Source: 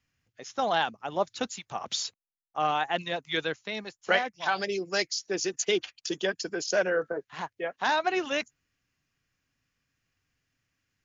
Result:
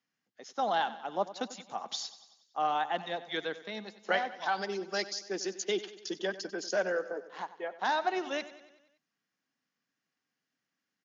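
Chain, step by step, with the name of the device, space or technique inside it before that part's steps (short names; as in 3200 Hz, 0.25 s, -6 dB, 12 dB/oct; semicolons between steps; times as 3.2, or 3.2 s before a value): 6.96–7.8 bell 130 Hz -13.5 dB 0.77 oct; television speaker (speaker cabinet 190–6600 Hz, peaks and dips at 200 Hz +4 dB, 800 Hz +4 dB, 2500 Hz -6 dB); feedback echo 94 ms, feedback 57%, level -15.5 dB; gain -5 dB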